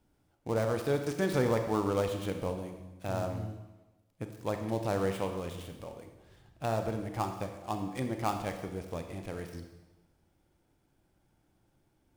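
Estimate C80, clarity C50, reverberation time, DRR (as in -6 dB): 9.0 dB, 7.0 dB, 1.1 s, 5.5 dB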